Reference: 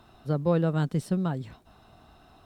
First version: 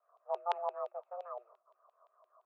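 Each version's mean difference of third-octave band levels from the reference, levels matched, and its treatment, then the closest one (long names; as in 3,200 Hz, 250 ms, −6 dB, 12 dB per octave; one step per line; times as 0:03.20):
12.0 dB: noise that follows the level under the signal 11 dB
formant resonators in series u
auto-filter band-pass saw down 5.8 Hz 500–3,100 Hz
frequency shifter +350 Hz
level +11.5 dB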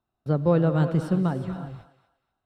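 6.0 dB: reverb whose tail is shaped and stops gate 380 ms rising, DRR 8.5 dB
noise gate −47 dBFS, range −30 dB
high-shelf EQ 4,000 Hz −10.5 dB
on a send: feedback echo with a high-pass in the loop 241 ms, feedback 29%, high-pass 730 Hz, level −13 dB
on the sum: level +3.5 dB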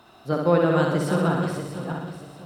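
8.5 dB: feedback delay that plays each chunk backwards 321 ms, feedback 54%, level −5 dB
flutter between parallel walls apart 10.9 metres, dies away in 0.93 s
dynamic equaliser 1,500 Hz, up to +4 dB, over −44 dBFS, Q 0.99
high-pass filter 270 Hz 6 dB per octave
level +5 dB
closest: second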